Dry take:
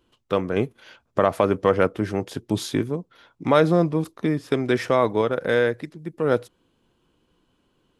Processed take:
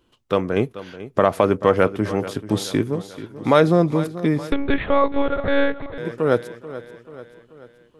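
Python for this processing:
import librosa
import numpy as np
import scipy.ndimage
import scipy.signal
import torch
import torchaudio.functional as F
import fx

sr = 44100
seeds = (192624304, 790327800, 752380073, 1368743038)

p1 = x + fx.echo_feedback(x, sr, ms=435, feedback_pct=53, wet_db=-15.0, dry=0)
p2 = fx.lpc_monotone(p1, sr, seeds[0], pitch_hz=280.0, order=8, at=(4.52, 5.98))
y = F.gain(torch.from_numpy(p2), 2.5).numpy()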